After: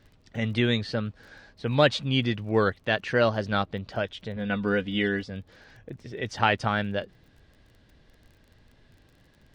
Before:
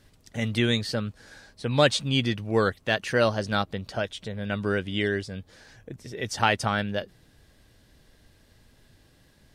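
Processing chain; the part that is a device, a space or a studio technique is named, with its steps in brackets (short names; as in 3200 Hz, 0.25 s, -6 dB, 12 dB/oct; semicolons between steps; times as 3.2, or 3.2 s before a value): lo-fi chain (LPF 3800 Hz 12 dB/oct; wow and flutter 26 cents; crackle 26/s -46 dBFS); 4.36–5.3 comb 4.1 ms, depth 65%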